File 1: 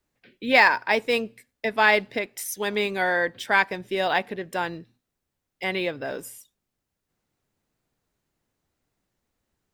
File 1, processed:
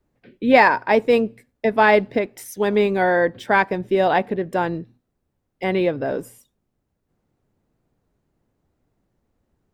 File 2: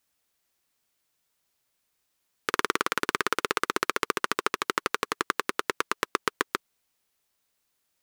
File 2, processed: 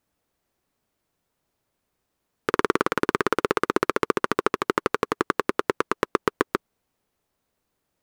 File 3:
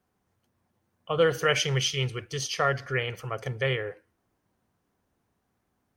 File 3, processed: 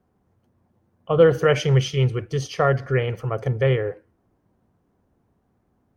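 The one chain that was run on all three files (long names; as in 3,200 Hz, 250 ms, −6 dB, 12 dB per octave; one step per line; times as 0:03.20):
tilt shelving filter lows +8 dB, about 1,300 Hz
level +2.5 dB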